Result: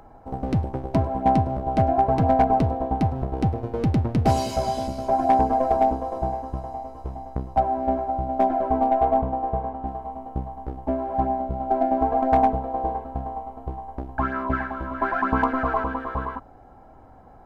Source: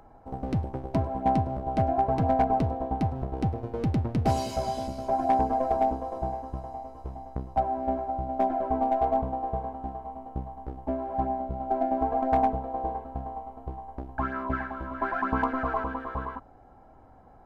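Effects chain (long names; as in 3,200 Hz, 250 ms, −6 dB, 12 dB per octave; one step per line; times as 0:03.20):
0:08.88–0:09.87: low-pass filter 3,500 Hz 12 dB per octave
level +5 dB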